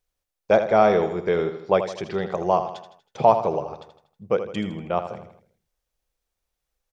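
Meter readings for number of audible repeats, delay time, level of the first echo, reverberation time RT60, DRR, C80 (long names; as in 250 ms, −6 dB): 4, 80 ms, −10.0 dB, no reverb audible, no reverb audible, no reverb audible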